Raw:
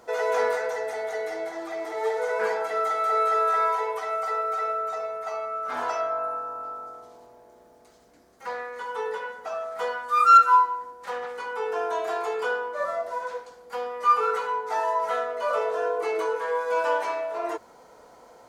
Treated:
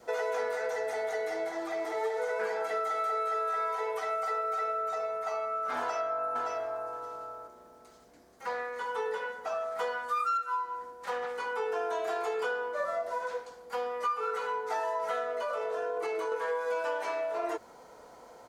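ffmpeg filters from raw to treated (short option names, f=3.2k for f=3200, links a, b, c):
-filter_complex "[0:a]asplit=2[a][b];[b]afade=t=in:st=5.78:d=0.01,afade=t=out:st=6.9:d=0.01,aecho=0:1:570|1140:0.562341|0.0562341[c];[a][c]amix=inputs=2:normalize=0,asettb=1/sr,asplit=3[d][e][f];[d]atrim=end=15.334[g];[e]atrim=start=15.33:end=16.32,asetpts=PTS-STARTPTS,afade=t=in:d=0.004:c=qsin,afade=t=out:st=0.986:d=0.004:c=qsin,acompressor=threshold=-27dB:ratio=6:attack=3.2:release=140:knee=1:detection=peak[h];[f]atrim=start=16.316[i];[g][h]acrossfade=d=0.004:c1=hsin:c2=qsin[j];[j][i]acrossfade=d=0.004:c1=qsin:c2=hsin,adynamicequalizer=threshold=0.01:dfrequency=1000:dqfactor=4.2:tfrequency=1000:tqfactor=4.2:attack=5:release=100:ratio=0.375:range=2.5:mode=cutabove:tftype=bell,acompressor=threshold=-27dB:ratio=12,volume=-1dB"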